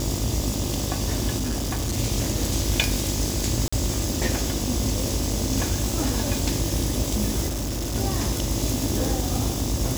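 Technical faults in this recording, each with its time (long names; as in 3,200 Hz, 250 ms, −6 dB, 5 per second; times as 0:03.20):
mains buzz 50 Hz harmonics 25 −29 dBFS
0:01.36–0:01.98: clipping −22.5 dBFS
0:03.68–0:03.73: drop-out 45 ms
0:07.47–0:07.96: clipping −24.5 dBFS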